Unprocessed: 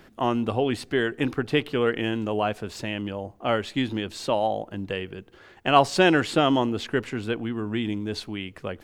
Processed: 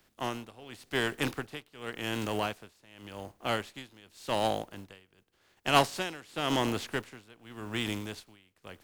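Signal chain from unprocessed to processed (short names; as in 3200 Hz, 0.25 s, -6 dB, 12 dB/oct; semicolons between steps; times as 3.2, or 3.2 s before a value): spectral contrast lowered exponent 0.57; tremolo 0.89 Hz, depth 88%; in parallel at -7 dB: wavefolder -17.5 dBFS; on the sum: three-band expander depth 40%; gain -8 dB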